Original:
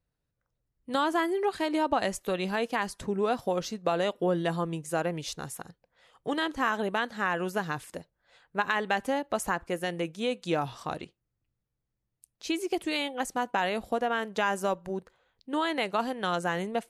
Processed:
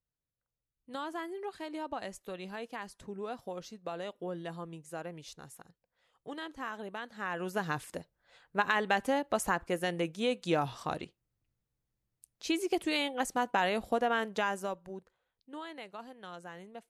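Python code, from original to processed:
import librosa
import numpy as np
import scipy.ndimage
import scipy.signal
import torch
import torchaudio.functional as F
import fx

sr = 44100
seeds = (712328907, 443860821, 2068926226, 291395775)

y = fx.gain(x, sr, db=fx.line((7.02, -12.0), (7.72, -1.0), (14.24, -1.0), (14.72, -8.5), (15.94, -17.0)))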